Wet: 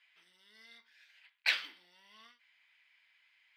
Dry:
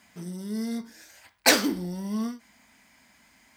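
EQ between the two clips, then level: resonant high-pass 2900 Hz, resonance Q 1.7; air absorption 470 m; 0.0 dB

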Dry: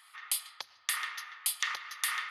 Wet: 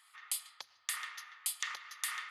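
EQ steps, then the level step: bell 7500 Hz +7 dB 0.46 oct; -6.5 dB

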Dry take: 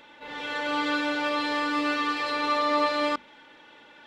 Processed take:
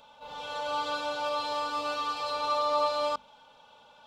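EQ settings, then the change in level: fixed phaser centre 790 Hz, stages 4; 0.0 dB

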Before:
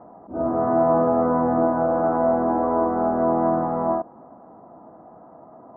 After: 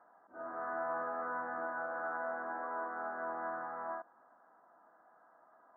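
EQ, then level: band-pass 1600 Hz, Q 6.5; +2.0 dB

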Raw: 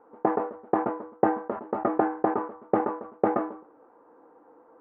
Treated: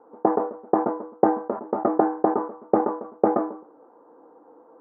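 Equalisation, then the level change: HPF 160 Hz 12 dB/oct; LPF 1100 Hz 12 dB/oct; +4.5 dB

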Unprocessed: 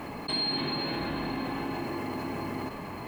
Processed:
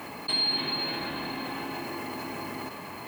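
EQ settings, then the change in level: HPF 52 Hz; tilt +2 dB/oct; 0.0 dB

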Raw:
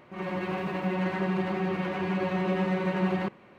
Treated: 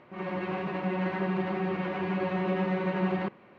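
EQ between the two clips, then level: air absorption 150 m; low shelf 100 Hz -6.5 dB; 0.0 dB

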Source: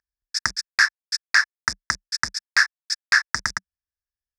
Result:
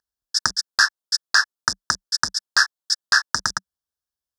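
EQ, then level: HPF 140 Hz 6 dB/oct; Butterworth band-stop 2200 Hz, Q 1.5; +4.5 dB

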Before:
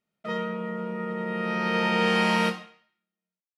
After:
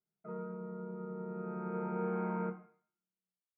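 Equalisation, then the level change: rippled Chebyshev low-pass 2200 Hz, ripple 9 dB; bell 760 Hz -10.5 dB 1.8 oct; fixed phaser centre 370 Hz, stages 8; +2.5 dB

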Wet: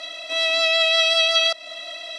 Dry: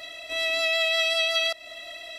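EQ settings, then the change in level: speaker cabinet 300–8900 Hz, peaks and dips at 390 Hz -10 dB, 690 Hz -3 dB, 1900 Hz -6 dB, 2700 Hz -4 dB, 7600 Hz -7 dB; +8.5 dB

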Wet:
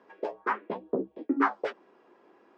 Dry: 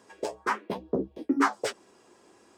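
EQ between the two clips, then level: BPF 240–2300 Hz; air absorption 76 m; 0.0 dB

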